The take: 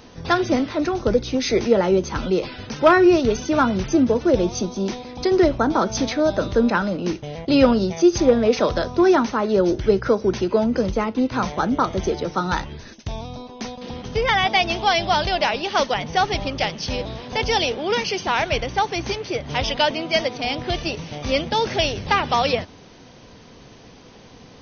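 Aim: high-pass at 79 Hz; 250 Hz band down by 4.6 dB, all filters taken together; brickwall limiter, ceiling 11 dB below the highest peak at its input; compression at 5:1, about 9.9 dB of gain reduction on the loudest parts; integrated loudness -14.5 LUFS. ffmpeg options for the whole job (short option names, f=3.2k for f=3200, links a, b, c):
-af "highpass=79,equalizer=f=250:t=o:g=-6.5,acompressor=threshold=-23dB:ratio=5,volume=16.5dB,alimiter=limit=-5dB:level=0:latency=1"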